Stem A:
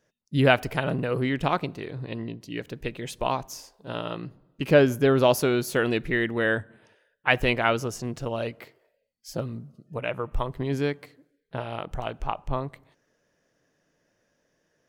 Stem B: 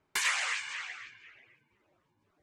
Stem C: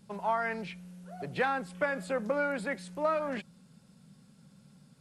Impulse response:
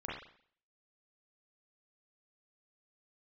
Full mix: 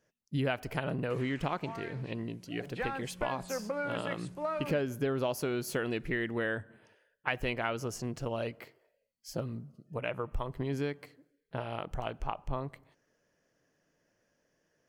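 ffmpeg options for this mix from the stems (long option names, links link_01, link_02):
-filter_complex "[0:a]bandreject=frequency=3700:width=13,volume=-4dB[link_01];[1:a]acrossover=split=3000[link_02][link_03];[link_03]acompressor=threshold=-44dB:ratio=4:attack=1:release=60[link_04];[link_02][link_04]amix=inputs=2:normalize=0,adelay=950,volume=-19dB[link_05];[2:a]dynaudnorm=framelen=350:gausssize=7:maxgain=10dB,adelay=1400,volume=-14dB[link_06];[link_01][link_05][link_06]amix=inputs=3:normalize=0,acompressor=threshold=-29dB:ratio=4"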